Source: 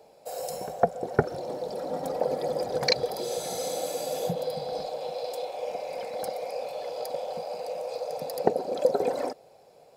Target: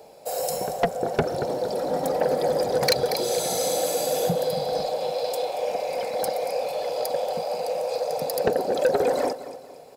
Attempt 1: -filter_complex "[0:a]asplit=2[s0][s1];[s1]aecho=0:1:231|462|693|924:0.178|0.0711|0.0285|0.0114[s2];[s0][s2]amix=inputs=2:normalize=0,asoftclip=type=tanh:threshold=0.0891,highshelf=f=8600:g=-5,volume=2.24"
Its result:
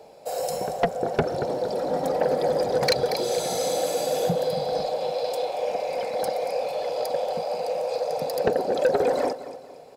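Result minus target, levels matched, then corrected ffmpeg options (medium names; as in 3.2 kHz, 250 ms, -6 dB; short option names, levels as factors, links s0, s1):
8 kHz band -4.0 dB
-filter_complex "[0:a]asplit=2[s0][s1];[s1]aecho=0:1:231|462|693|924:0.178|0.0711|0.0285|0.0114[s2];[s0][s2]amix=inputs=2:normalize=0,asoftclip=type=tanh:threshold=0.0891,highshelf=f=8600:g=5,volume=2.24"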